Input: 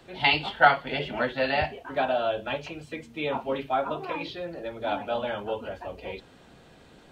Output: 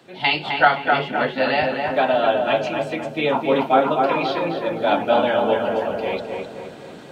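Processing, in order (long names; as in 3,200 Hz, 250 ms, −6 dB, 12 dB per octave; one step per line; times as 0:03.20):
speech leveller within 5 dB 2 s
Chebyshev high-pass filter 170 Hz, order 2
feedback echo with a low-pass in the loop 259 ms, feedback 52%, low-pass 2,100 Hz, level −3 dB
level +6.5 dB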